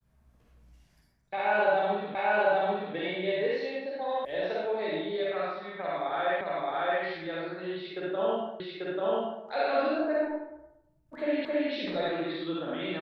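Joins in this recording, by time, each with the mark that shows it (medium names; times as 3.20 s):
2.15 s: repeat of the last 0.79 s
4.25 s: sound stops dead
6.41 s: repeat of the last 0.62 s
8.60 s: repeat of the last 0.84 s
11.45 s: repeat of the last 0.27 s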